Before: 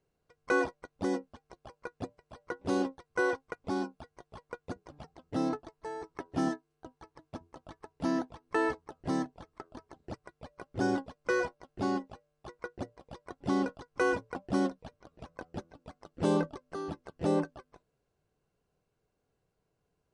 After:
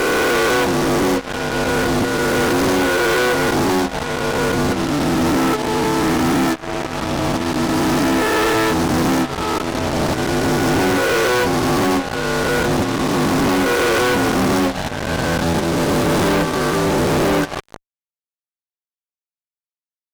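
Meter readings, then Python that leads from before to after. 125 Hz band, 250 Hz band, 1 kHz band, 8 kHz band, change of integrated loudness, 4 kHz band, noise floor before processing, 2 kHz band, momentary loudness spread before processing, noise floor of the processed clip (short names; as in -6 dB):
+20.0 dB, +17.0 dB, +19.0 dB, +26.5 dB, +16.5 dB, +27.0 dB, -81 dBFS, +18.5 dB, 21 LU, under -85 dBFS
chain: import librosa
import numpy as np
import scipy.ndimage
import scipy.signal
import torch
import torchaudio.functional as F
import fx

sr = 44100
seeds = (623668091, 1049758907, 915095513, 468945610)

y = fx.spec_swells(x, sr, rise_s=2.55)
y = fx.fuzz(y, sr, gain_db=46.0, gate_db=-44.0)
y = fx.transient(y, sr, attack_db=-2, sustain_db=-7)
y = y * 10.0 ** (-1.5 / 20.0)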